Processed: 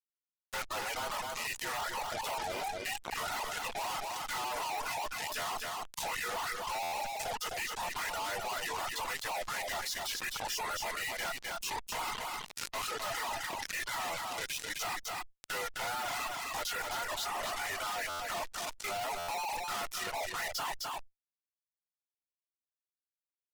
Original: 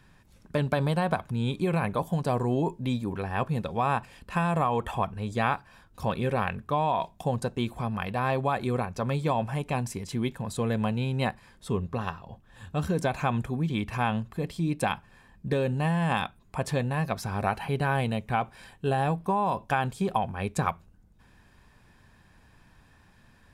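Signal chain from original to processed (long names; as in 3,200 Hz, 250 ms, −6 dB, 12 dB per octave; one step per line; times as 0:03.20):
partials spread apart or drawn together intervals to 89%
treble cut that deepens with the level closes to 2,100 Hz, closed at −24 dBFS
high-pass filter 810 Hz 24 dB per octave
fuzz pedal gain 40 dB, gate −50 dBFS
tube saturation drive 30 dB, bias 0.6
high-shelf EQ 3,500 Hz +7 dB
brickwall limiter −25.5 dBFS, peak gain reduction 5 dB
reverb reduction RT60 1.7 s
single-tap delay 259 ms −8.5 dB
buffer that repeats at 0:06.82/0:18.09/0:19.18, samples 512, times 8
envelope flattener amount 70%
level −3.5 dB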